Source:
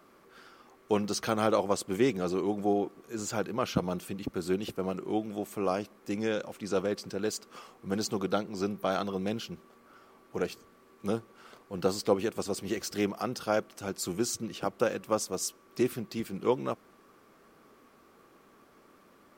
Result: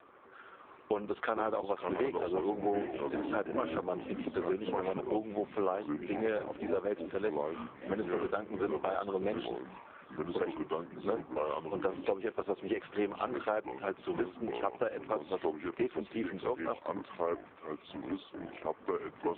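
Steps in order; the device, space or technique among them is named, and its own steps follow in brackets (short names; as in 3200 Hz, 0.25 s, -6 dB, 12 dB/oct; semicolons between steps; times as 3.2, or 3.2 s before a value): 8.38–8.83 ripple EQ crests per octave 1.8, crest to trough 6 dB; echoes that change speed 0.217 s, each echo -4 st, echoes 3, each echo -6 dB; voicemail (BPF 370–2700 Hz; compressor 12:1, threshold -33 dBFS, peak gain reduction 13 dB; gain +6 dB; AMR-NB 5.15 kbps 8000 Hz)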